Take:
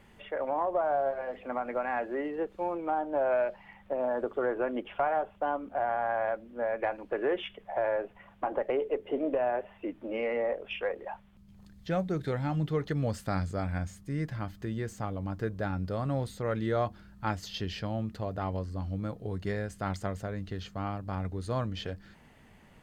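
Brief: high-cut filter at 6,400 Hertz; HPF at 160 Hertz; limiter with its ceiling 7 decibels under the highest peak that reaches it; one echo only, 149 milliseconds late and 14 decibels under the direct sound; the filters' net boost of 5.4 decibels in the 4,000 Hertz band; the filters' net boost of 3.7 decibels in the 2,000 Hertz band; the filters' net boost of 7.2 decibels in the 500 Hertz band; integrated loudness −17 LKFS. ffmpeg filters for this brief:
ffmpeg -i in.wav -af "highpass=160,lowpass=6400,equalizer=frequency=500:width_type=o:gain=8.5,equalizer=frequency=2000:width_type=o:gain=3,equalizer=frequency=4000:width_type=o:gain=6.5,alimiter=limit=-18dB:level=0:latency=1,aecho=1:1:149:0.2,volume=12.5dB" out.wav

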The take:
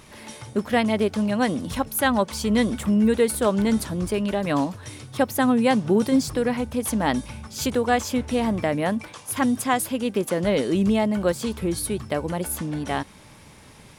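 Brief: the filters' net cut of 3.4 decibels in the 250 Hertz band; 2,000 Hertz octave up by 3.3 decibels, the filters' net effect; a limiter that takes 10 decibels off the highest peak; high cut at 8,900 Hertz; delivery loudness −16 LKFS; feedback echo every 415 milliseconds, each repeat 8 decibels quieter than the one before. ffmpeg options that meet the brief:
ffmpeg -i in.wav -af "lowpass=8900,equalizer=frequency=250:width_type=o:gain=-4,equalizer=frequency=2000:width_type=o:gain=4,alimiter=limit=-15.5dB:level=0:latency=1,aecho=1:1:415|830|1245|1660|2075:0.398|0.159|0.0637|0.0255|0.0102,volume=10dB" out.wav

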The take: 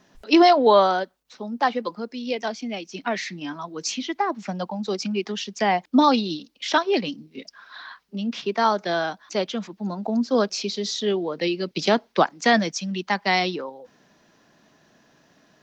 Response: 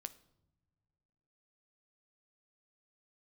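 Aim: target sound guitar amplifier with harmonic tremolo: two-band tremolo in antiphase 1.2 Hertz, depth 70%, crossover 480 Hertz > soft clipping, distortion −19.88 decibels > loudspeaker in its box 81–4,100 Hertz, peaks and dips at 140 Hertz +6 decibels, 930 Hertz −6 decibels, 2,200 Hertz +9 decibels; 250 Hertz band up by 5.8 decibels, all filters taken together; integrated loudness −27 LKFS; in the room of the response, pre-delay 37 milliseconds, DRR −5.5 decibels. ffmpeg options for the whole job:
-filter_complex "[0:a]equalizer=frequency=250:width_type=o:gain=7,asplit=2[link_01][link_02];[1:a]atrim=start_sample=2205,adelay=37[link_03];[link_02][link_03]afir=irnorm=-1:irlink=0,volume=9.5dB[link_04];[link_01][link_04]amix=inputs=2:normalize=0,acrossover=split=480[link_05][link_06];[link_05]aeval=exprs='val(0)*(1-0.7/2+0.7/2*cos(2*PI*1.2*n/s))':channel_layout=same[link_07];[link_06]aeval=exprs='val(0)*(1-0.7/2-0.7/2*cos(2*PI*1.2*n/s))':channel_layout=same[link_08];[link_07][link_08]amix=inputs=2:normalize=0,asoftclip=threshold=-2.5dB,highpass=81,equalizer=frequency=140:width_type=q:width=4:gain=6,equalizer=frequency=930:width_type=q:width=4:gain=-6,equalizer=frequency=2200:width_type=q:width=4:gain=9,lowpass=frequency=4100:width=0.5412,lowpass=frequency=4100:width=1.3066,volume=-8dB"

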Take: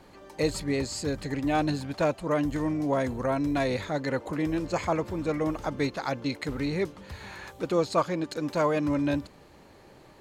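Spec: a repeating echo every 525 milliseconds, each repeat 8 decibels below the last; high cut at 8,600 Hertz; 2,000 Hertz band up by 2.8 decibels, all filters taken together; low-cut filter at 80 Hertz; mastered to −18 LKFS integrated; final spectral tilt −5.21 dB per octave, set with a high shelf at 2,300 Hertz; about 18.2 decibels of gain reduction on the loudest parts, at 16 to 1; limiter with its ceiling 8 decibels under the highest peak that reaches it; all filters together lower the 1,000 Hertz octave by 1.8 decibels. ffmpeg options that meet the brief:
ffmpeg -i in.wav -af "highpass=80,lowpass=8600,equalizer=frequency=1000:width_type=o:gain=-3,equalizer=frequency=2000:width_type=o:gain=7.5,highshelf=frequency=2300:gain=-6.5,acompressor=threshold=-39dB:ratio=16,alimiter=level_in=11dB:limit=-24dB:level=0:latency=1,volume=-11dB,aecho=1:1:525|1050|1575|2100|2625:0.398|0.159|0.0637|0.0255|0.0102,volume=26.5dB" out.wav

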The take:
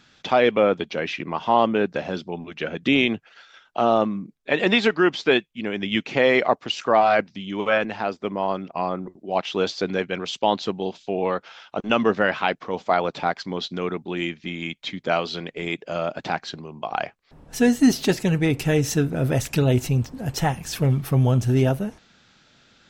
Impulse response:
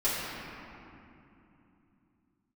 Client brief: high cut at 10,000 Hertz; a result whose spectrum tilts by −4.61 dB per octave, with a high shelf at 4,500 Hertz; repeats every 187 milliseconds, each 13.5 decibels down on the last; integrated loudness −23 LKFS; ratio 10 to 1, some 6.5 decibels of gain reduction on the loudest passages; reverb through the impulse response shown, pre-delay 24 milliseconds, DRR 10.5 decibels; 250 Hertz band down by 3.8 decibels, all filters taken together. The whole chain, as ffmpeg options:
-filter_complex "[0:a]lowpass=10000,equalizer=frequency=250:width_type=o:gain=-5,highshelf=frequency=4500:gain=4.5,acompressor=threshold=-20dB:ratio=10,aecho=1:1:187|374:0.211|0.0444,asplit=2[link_01][link_02];[1:a]atrim=start_sample=2205,adelay=24[link_03];[link_02][link_03]afir=irnorm=-1:irlink=0,volume=-21.5dB[link_04];[link_01][link_04]amix=inputs=2:normalize=0,volume=4dB"

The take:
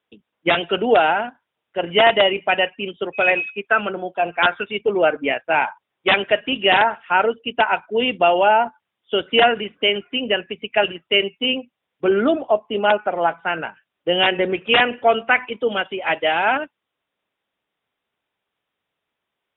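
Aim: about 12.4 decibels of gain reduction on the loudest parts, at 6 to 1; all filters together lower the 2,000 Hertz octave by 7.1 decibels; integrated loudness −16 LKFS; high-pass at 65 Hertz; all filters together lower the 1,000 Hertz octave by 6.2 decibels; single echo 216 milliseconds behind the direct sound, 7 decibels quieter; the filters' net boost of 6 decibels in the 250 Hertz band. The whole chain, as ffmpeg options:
ffmpeg -i in.wav -af "highpass=65,equalizer=frequency=250:width_type=o:gain=8.5,equalizer=frequency=1000:width_type=o:gain=-9,equalizer=frequency=2000:width_type=o:gain=-7,acompressor=threshold=-23dB:ratio=6,aecho=1:1:216:0.447,volume=11.5dB" out.wav

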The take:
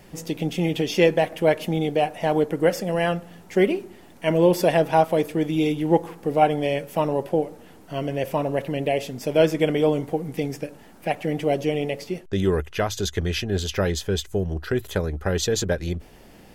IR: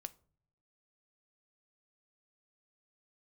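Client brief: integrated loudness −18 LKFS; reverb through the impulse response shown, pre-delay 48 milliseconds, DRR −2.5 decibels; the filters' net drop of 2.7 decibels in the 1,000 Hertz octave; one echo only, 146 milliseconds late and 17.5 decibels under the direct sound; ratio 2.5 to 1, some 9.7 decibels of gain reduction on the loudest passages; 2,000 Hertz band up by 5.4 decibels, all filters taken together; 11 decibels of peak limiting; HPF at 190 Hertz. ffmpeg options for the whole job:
-filter_complex "[0:a]highpass=190,equalizer=frequency=1000:width_type=o:gain=-5.5,equalizer=frequency=2000:width_type=o:gain=8,acompressor=threshold=-28dB:ratio=2.5,alimiter=limit=-22.5dB:level=0:latency=1,aecho=1:1:146:0.133,asplit=2[link_01][link_02];[1:a]atrim=start_sample=2205,adelay=48[link_03];[link_02][link_03]afir=irnorm=-1:irlink=0,volume=6.5dB[link_04];[link_01][link_04]amix=inputs=2:normalize=0,volume=11dB"

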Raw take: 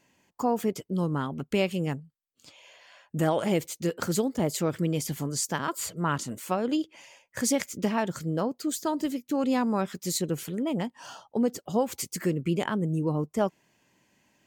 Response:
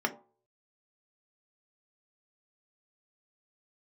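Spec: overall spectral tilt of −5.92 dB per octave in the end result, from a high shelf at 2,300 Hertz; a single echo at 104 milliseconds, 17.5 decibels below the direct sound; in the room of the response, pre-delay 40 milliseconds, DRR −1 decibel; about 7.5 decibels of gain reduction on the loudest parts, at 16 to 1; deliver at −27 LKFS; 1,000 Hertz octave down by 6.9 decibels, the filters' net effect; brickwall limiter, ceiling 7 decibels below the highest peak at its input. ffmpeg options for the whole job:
-filter_complex "[0:a]equalizer=frequency=1000:width_type=o:gain=-8,highshelf=frequency=2300:gain=-7,acompressor=threshold=-29dB:ratio=16,alimiter=level_in=2.5dB:limit=-24dB:level=0:latency=1,volume=-2.5dB,aecho=1:1:104:0.133,asplit=2[link_01][link_02];[1:a]atrim=start_sample=2205,adelay=40[link_03];[link_02][link_03]afir=irnorm=-1:irlink=0,volume=-7dB[link_04];[link_01][link_04]amix=inputs=2:normalize=0,volume=6dB"

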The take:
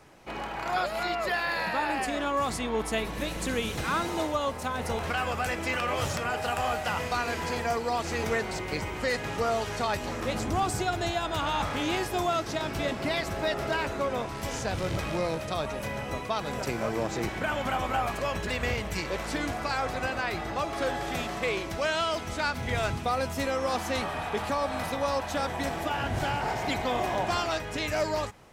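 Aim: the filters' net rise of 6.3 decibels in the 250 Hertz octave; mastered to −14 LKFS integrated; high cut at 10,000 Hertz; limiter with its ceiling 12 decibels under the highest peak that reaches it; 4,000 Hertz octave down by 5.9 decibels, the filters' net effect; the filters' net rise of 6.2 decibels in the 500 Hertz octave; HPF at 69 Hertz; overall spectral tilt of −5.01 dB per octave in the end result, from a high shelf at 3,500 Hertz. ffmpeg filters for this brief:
ffmpeg -i in.wav -af "highpass=69,lowpass=10000,equalizer=frequency=250:width_type=o:gain=6,equalizer=frequency=500:width_type=o:gain=6.5,highshelf=frequency=3500:gain=-6.5,equalizer=frequency=4000:width_type=o:gain=-3.5,volume=18.5dB,alimiter=limit=-5.5dB:level=0:latency=1" out.wav

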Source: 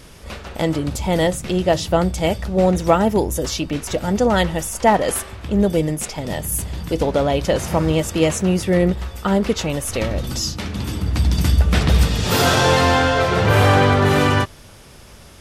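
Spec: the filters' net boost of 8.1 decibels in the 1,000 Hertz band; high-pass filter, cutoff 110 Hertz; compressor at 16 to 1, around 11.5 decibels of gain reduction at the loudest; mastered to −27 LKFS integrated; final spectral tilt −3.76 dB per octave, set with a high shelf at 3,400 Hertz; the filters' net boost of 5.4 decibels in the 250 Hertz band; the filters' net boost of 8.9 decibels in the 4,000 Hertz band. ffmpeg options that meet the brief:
ffmpeg -i in.wav -af "highpass=110,equalizer=frequency=250:width_type=o:gain=7.5,equalizer=frequency=1000:width_type=o:gain=9,highshelf=frequency=3400:gain=7,equalizer=frequency=4000:width_type=o:gain=6,acompressor=threshold=-14dB:ratio=16,volume=-7.5dB" out.wav

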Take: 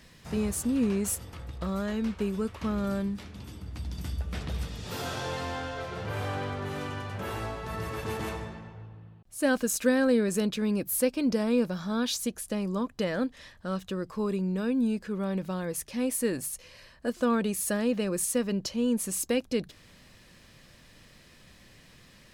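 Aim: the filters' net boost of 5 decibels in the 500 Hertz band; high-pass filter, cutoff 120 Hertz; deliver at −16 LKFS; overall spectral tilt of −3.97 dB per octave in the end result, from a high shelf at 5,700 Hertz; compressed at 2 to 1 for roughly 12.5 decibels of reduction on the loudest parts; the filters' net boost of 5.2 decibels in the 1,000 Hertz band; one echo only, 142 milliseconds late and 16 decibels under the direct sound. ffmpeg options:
ffmpeg -i in.wav -af "highpass=120,equalizer=frequency=500:width_type=o:gain=4.5,equalizer=frequency=1000:width_type=o:gain=5,highshelf=frequency=5700:gain=8,acompressor=threshold=-39dB:ratio=2,aecho=1:1:142:0.158,volume=20dB" out.wav

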